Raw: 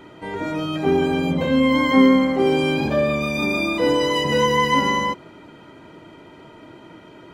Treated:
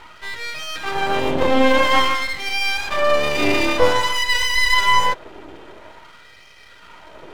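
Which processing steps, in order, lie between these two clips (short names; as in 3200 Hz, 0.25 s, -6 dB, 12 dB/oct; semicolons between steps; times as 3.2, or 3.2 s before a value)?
LFO high-pass sine 0.5 Hz 360–2200 Hz; half-wave rectifier; gain +6 dB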